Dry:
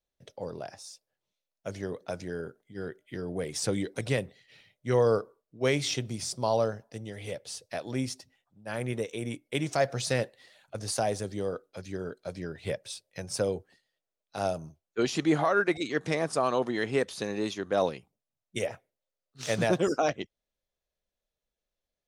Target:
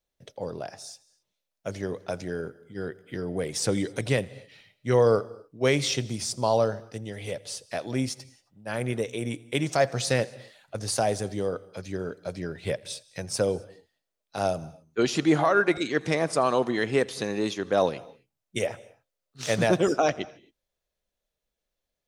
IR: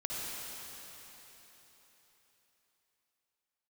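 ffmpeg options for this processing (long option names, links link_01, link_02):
-filter_complex "[0:a]asplit=2[link_01][link_02];[1:a]atrim=start_sample=2205,afade=type=out:start_time=0.24:duration=0.01,atrim=end_sample=11025,adelay=84[link_03];[link_02][link_03]afir=irnorm=-1:irlink=0,volume=-21dB[link_04];[link_01][link_04]amix=inputs=2:normalize=0,volume=3.5dB"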